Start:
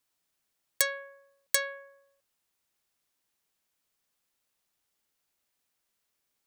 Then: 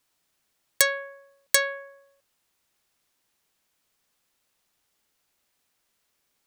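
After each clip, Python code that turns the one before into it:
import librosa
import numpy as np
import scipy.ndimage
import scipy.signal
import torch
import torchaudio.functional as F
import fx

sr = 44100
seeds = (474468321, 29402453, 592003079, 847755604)

y = fx.high_shelf(x, sr, hz=8300.0, db=-3.5)
y = y * 10.0 ** (7.5 / 20.0)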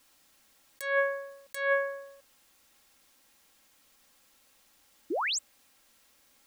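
y = x + 0.48 * np.pad(x, (int(3.7 * sr / 1000.0), 0))[:len(x)]
y = fx.over_compress(y, sr, threshold_db=-32.0, ratio=-1.0)
y = fx.spec_paint(y, sr, seeds[0], shape='rise', start_s=5.1, length_s=0.29, low_hz=280.0, high_hz=8400.0, level_db=-32.0)
y = y * 10.0 ** (2.0 / 20.0)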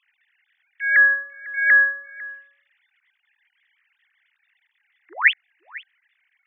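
y = fx.sine_speech(x, sr)
y = fx.highpass_res(y, sr, hz=1900.0, q=5.2)
y = y + 10.0 ** (-20.5 / 20.0) * np.pad(y, (int(500 * sr / 1000.0), 0))[:len(y)]
y = y * 10.0 ** (7.5 / 20.0)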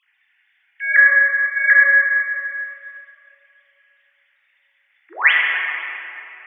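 y = fx.room_shoebox(x, sr, seeds[1], volume_m3=160.0, walls='hard', distance_m=0.6)
y = y * 10.0 ** (1.5 / 20.0)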